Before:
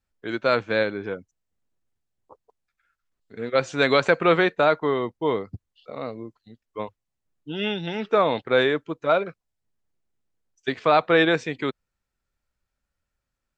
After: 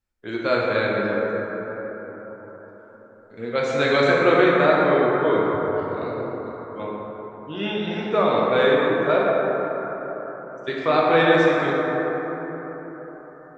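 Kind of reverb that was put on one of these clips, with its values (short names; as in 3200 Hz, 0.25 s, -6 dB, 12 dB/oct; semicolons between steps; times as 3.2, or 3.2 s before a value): plate-style reverb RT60 4.8 s, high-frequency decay 0.3×, DRR -5 dB; gain -3.5 dB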